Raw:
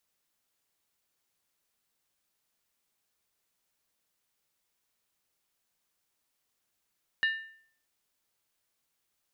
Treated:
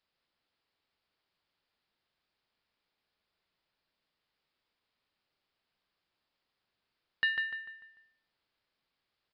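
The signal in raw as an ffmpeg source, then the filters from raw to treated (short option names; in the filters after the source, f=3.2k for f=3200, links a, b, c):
-f lavfi -i "aevalsrc='0.0794*pow(10,-3*t/0.57)*sin(2*PI*1790*t)+0.0299*pow(10,-3*t/0.451)*sin(2*PI*2853.3*t)+0.0112*pow(10,-3*t/0.39)*sin(2*PI*3823.4*t)+0.00422*pow(10,-3*t/0.376)*sin(2*PI*4109.8*t)+0.00158*pow(10,-3*t/0.35)*sin(2*PI*4748.9*t)':d=0.63:s=44100"
-filter_complex "[0:a]asplit=2[a][b];[b]adelay=148,lowpass=f=3.6k:p=1,volume=-5dB,asplit=2[c][d];[d]adelay=148,lowpass=f=3.6k:p=1,volume=0.43,asplit=2[e][f];[f]adelay=148,lowpass=f=3.6k:p=1,volume=0.43,asplit=2[g][h];[h]adelay=148,lowpass=f=3.6k:p=1,volume=0.43,asplit=2[i][j];[j]adelay=148,lowpass=f=3.6k:p=1,volume=0.43[k];[c][e][g][i][k]amix=inputs=5:normalize=0[l];[a][l]amix=inputs=2:normalize=0,aresample=11025,aresample=44100"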